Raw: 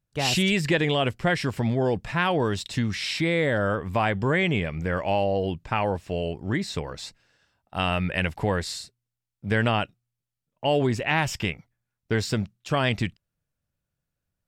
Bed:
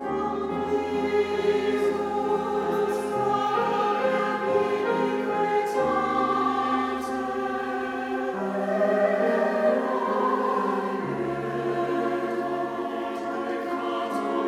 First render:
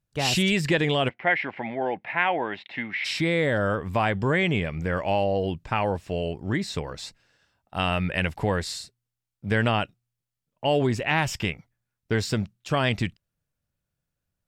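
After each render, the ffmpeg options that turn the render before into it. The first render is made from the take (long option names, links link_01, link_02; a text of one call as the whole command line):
ffmpeg -i in.wav -filter_complex "[0:a]asplit=3[link_01][link_02][link_03];[link_01]afade=type=out:start_time=1.08:duration=0.02[link_04];[link_02]highpass=360,equalizer=frequency=440:width_type=q:width=4:gain=-7,equalizer=frequency=790:width_type=q:width=4:gain=6,equalizer=frequency=1200:width_type=q:width=4:gain=-6,equalizer=frequency=2100:width_type=q:width=4:gain=10,lowpass=frequency=2800:width=0.5412,lowpass=frequency=2800:width=1.3066,afade=type=in:start_time=1.08:duration=0.02,afade=type=out:start_time=3.04:duration=0.02[link_05];[link_03]afade=type=in:start_time=3.04:duration=0.02[link_06];[link_04][link_05][link_06]amix=inputs=3:normalize=0" out.wav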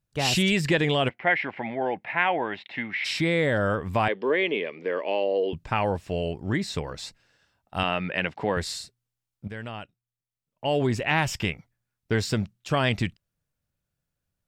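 ffmpeg -i in.wav -filter_complex "[0:a]asettb=1/sr,asplit=3[link_01][link_02][link_03];[link_01]atrim=end=4.084[link_04];[link_02]atrim=start=4.08:end=5.53,asetpts=PTS-STARTPTS,afade=type=in:duration=0.004:curve=qsin,afade=type=out:start_time=1.446:duration=0.004:curve=qsin,highpass=frequency=290:width=0.5412,highpass=frequency=290:width=1.3066,equalizer=frequency=440:width_type=q:width=4:gain=6,equalizer=frequency=760:width_type=q:width=4:gain=-8,equalizer=frequency=1400:width_type=q:width=4:gain=-9,lowpass=frequency=4200:width=0.5412,lowpass=frequency=4200:width=1.3066[link_05];[link_03]atrim=start=5.526[link_06];[link_04][link_05]acrossfade=duration=0.004:curve1=hsin:curve2=qsin[link_07];[link_07][link_06]acrossfade=duration=0.004:curve1=qsin:curve2=hsin,asettb=1/sr,asplit=3[link_08][link_09][link_10];[link_08]atrim=end=7.834[link_11];[link_09]atrim=start=7.83:end=8.57,asetpts=PTS-STARTPTS,afade=type=in:duration=0.004:curve=qsin,afade=type=out:start_time=0.736:duration=0.004:curve=qsin,highpass=200,lowpass=4200[link_12];[link_10]atrim=start=8.566[link_13];[link_11][link_12]acrossfade=duration=0.004:curve1=hsin:curve2=qsin[link_14];[link_14][link_13]acrossfade=duration=0.004:curve1=qsin:curve2=hsin,asplit=2[link_15][link_16];[link_15]atrim=end=9.48,asetpts=PTS-STARTPTS,afade=type=out:start_time=9.476:duration=0.004:curve=hsin:silence=0.188365[link_17];[link_16]atrim=start=9.48,asetpts=PTS-STARTPTS,afade=type=in:duration=1.47:curve=qua:silence=0.188365[link_18];[link_17][link_18]concat=n=2:v=0:a=1" out.wav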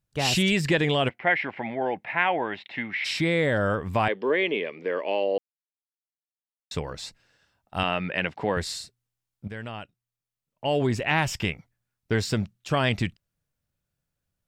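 ffmpeg -i in.wav -filter_complex "[0:a]asplit=3[link_01][link_02][link_03];[link_01]atrim=end=5.38,asetpts=PTS-STARTPTS,afade=type=out:start_time=5.376:duration=0.004:curve=hsin[link_04];[link_02]atrim=start=5.38:end=6.71,asetpts=PTS-STARTPTS,volume=0[link_05];[link_03]atrim=start=6.71,asetpts=PTS-STARTPTS,afade=type=in:duration=0.004:curve=hsin[link_06];[link_04][link_05][link_06]concat=n=3:v=0:a=1" out.wav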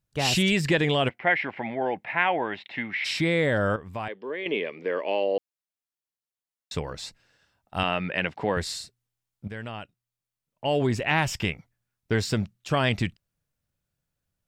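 ffmpeg -i in.wav -filter_complex "[0:a]asplit=3[link_01][link_02][link_03];[link_01]atrim=end=3.762[link_04];[link_02]atrim=start=3.758:end=4.462,asetpts=PTS-STARTPTS,volume=-9.5dB[link_05];[link_03]atrim=start=4.458[link_06];[link_04][link_05]acrossfade=duration=0.004:curve1=hsin:curve2=hsin[link_07];[link_07][link_06]acrossfade=duration=0.004:curve1=hsin:curve2=hsin" out.wav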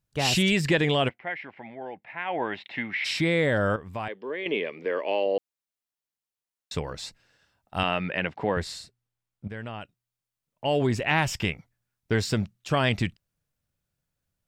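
ffmpeg -i in.wav -filter_complex "[0:a]asettb=1/sr,asplit=3[link_01][link_02][link_03];[link_01]atrim=end=4.854[link_04];[link_02]atrim=start=4.85:end=5.26,asetpts=PTS-STARTPTS,afade=type=in:duration=0.004:curve=qsin,afade=type=out:start_time=0.406:duration=0.004:curve=qsin,highpass=190[link_05];[link_03]atrim=start=5.256[link_06];[link_04][link_05]acrossfade=duration=0.004:curve1=hsin:curve2=qsin[link_07];[link_07][link_06]acrossfade=duration=0.004:curve1=qsin:curve2=hsin,asettb=1/sr,asplit=3[link_08][link_09][link_10];[link_08]atrim=end=8.154[link_11];[link_09]atrim=start=8.15:end=9.81,asetpts=PTS-STARTPTS,afade=type=in:duration=0.004:curve=qsin,afade=type=out:start_time=1.656:duration=0.004:curve=qsin,highshelf=frequency=3600:gain=-7[link_12];[link_10]atrim=start=9.806[link_13];[link_11][link_12]acrossfade=duration=0.004:curve1=hsin:curve2=qsin[link_14];[link_14][link_13]acrossfade=duration=0.004:curve1=qsin:curve2=hsin,asplit=3[link_15][link_16][link_17];[link_15]atrim=end=1.22,asetpts=PTS-STARTPTS,afade=type=out:start_time=1.05:duration=0.17:silence=0.298538[link_18];[link_16]atrim=start=1.22:end=2.25,asetpts=PTS-STARTPTS,volume=-10.5dB[link_19];[link_17]atrim=start=2.25,asetpts=PTS-STARTPTS,afade=type=in:duration=0.17:silence=0.298538[link_20];[link_18][link_19][link_20]concat=n=3:v=0:a=1" out.wav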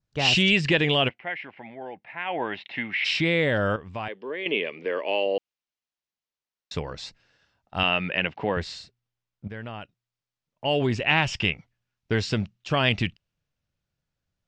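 ffmpeg -i in.wav -af "lowpass=frequency=6300:width=0.5412,lowpass=frequency=6300:width=1.3066,adynamicequalizer=threshold=0.00631:dfrequency=2800:dqfactor=2.9:tfrequency=2800:tqfactor=2.9:attack=5:release=100:ratio=0.375:range=4:mode=boostabove:tftype=bell" out.wav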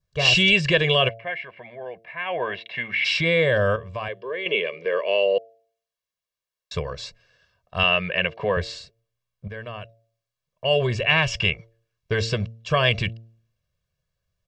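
ffmpeg -i in.wav -af "aecho=1:1:1.8:0.94,bandreject=frequency=113.4:width_type=h:width=4,bandreject=frequency=226.8:width_type=h:width=4,bandreject=frequency=340.2:width_type=h:width=4,bandreject=frequency=453.6:width_type=h:width=4,bandreject=frequency=567:width_type=h:width=4,bandreject=frequency=680.4:width_type=h:width=4" out.wav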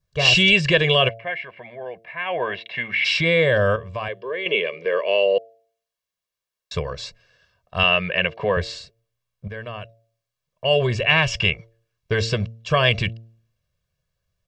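ffmpeg -i in.wav -af "volume=2dB" out.wav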